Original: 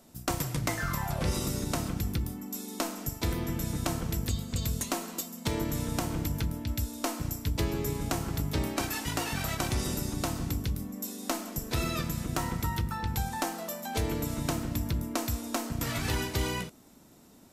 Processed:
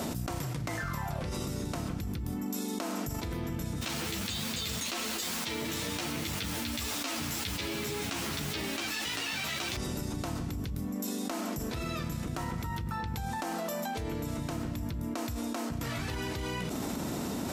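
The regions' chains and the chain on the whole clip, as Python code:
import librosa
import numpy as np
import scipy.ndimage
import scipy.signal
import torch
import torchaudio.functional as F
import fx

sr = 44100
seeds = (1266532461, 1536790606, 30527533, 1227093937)

y = fx.chain(x, sr, fx.weighting(curve='D'),
    fx.quant_dither(seeds[0], bits=6, dither='triangular'),
    fx.ensemble(), at=(3.81, 9.77))
y = scipy.signal.sosfilt(scipy.signal.butter(2, 44.0, 'highpass', fs=sr, output='sos'), y)
y = fx.high_shelf(y, sr, hz=6500.0, db=-8.0)
y = fx.env_flatten(y, sr, amount_pct=100)
y = y * librosa.db_to_amplitude(-8.5)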